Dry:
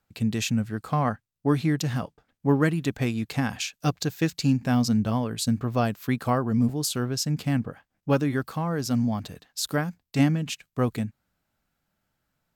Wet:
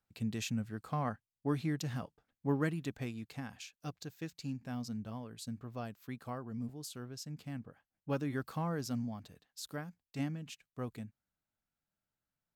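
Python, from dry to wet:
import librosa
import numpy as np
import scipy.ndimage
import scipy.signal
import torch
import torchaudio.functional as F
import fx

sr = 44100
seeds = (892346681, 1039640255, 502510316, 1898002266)

y = fx.gain(x, sr, db=fx.line((2.7, -11.0), (3.52, -18.0), (7.64, -18.0), (8.65, -7.5), (9.17, -16.0)))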